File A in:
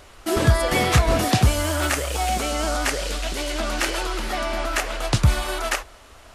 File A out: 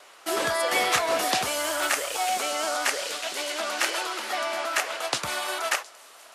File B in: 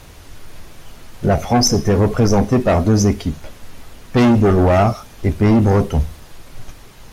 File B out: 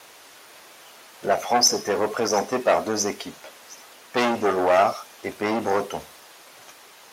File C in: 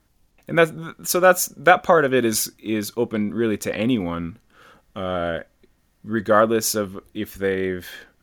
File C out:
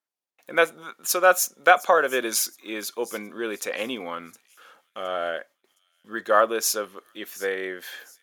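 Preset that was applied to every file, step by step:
noise gate with hold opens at −43 dBFS
high-pass filter 540 Hz 12 dB per octave
delay with a high-pass on its return 715 ms, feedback 34%, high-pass 5,500 Hz, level −16.5 dB
level −1 dB

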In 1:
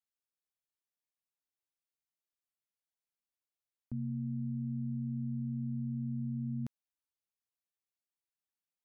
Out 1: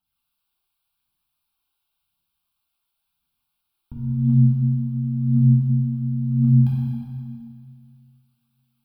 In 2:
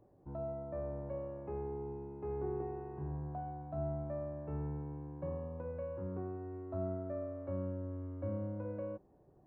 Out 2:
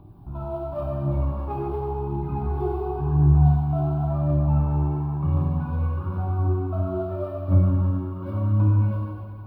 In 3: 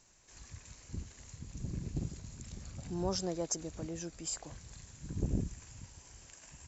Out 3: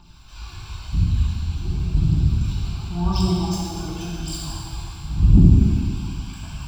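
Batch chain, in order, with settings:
in parallel at −0.5 dB: speech leveller within 4 dB 0.5 s
on the sum: phase shifter 0.93 Hz, delay 3 ms, feedback 75%
phaser with its sweep stopped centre 1,900 Hz, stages 6
dense smooth reverb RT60 2.2 s, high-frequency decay 0.95×, DRR −6.5 dB
level +2.5 dB

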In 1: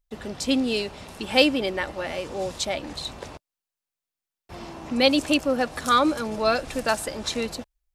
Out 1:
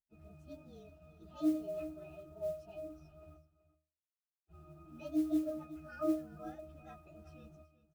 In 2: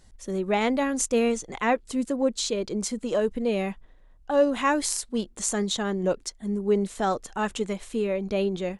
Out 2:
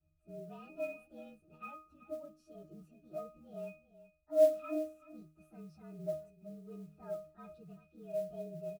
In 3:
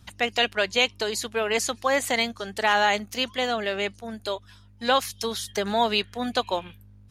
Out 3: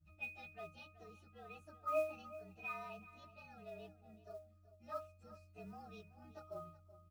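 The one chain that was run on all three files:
partials spread apart or drawn together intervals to 112%
high-shelf EQ 3,700 Hz +5.5 dB
resonances in every octave D#, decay 0.38 s
noise that follows the level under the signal 28 dB
single-tap delay 378 ms −16 dB

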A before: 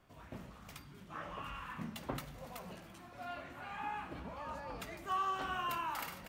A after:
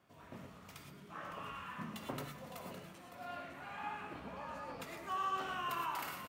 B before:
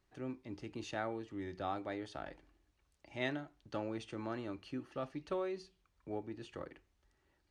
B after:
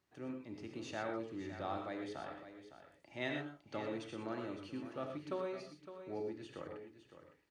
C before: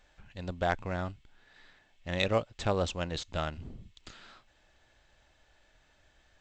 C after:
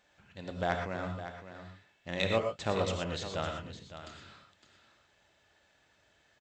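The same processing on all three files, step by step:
high-pass filter 110 Hz 12 dB per octave
single-tap delay 560 ms −11.5 dB
reverb whose tail is shaped and stops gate 140 ms rising, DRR 3 dB
level −2.5 dB

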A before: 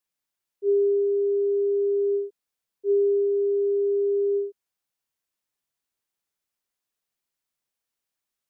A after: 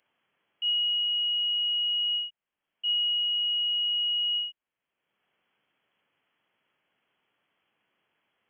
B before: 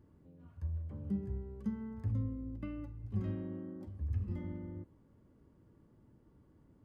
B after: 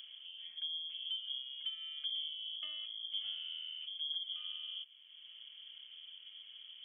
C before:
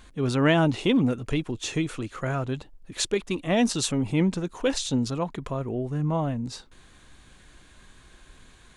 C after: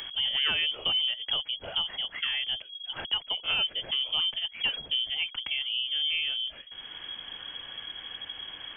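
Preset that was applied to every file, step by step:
voice inversion scrambler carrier 3,300 Hz
multiband upward and downward compressor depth 70%
level −4.5 dB

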